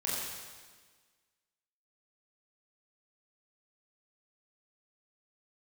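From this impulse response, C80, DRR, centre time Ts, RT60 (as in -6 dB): 0.5 dB, -7.5 dB, 0.106 s, 1.5 s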